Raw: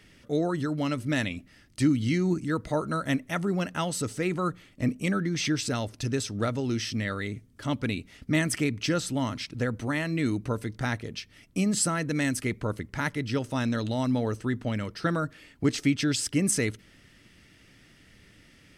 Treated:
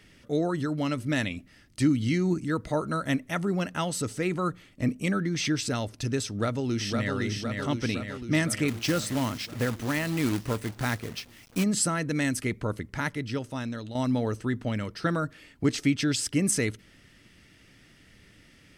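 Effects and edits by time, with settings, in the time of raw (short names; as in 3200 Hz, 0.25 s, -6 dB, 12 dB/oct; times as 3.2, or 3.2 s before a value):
6.27–7.15 echo throw 0.51 s, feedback 65%, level -3.5 dB
8.68–11.64 companded quantiser 4-bit
12.92–13.95 fade out, to -10 dB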